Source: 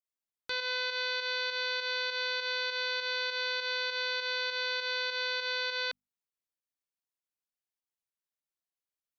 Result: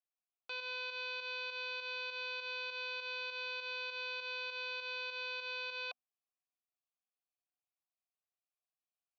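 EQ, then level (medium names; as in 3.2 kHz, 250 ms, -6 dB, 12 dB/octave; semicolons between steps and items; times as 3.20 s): vowel filter a; treble shelf 3 kHz +9.5 dB; +4.0 dB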